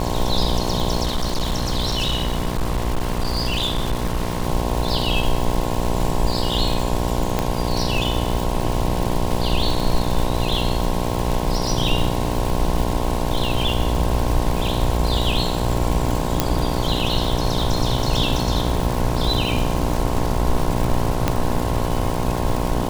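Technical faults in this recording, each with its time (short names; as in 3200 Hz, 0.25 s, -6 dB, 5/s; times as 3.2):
buzz 60 Hz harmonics 18 -24 dBFS
crackle 410/s -24 dBFS
1.03–4.47 clipped -16.5 dBFS
7.39 pop -5 dBFS
16.4 pop -1 dBFS
21.28 pop -4 dBFS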